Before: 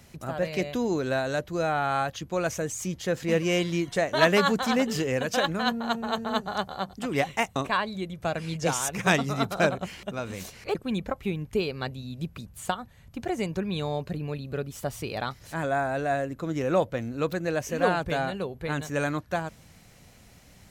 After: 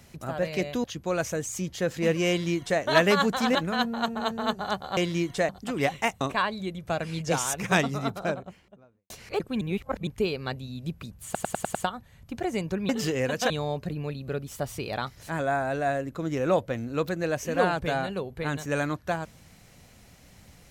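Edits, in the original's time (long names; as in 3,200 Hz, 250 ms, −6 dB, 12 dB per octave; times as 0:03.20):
0:00.84–0:02.10: remove
0:03.55–0:04.07: duplicate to 0:06.84
0:04.81–0:05.42: move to 0:13.74
0:08.94–0:10.45: fade out and dull
0:10.96–0:11.42: reverse
0:12.60: stutter 0.10 s, 6 plays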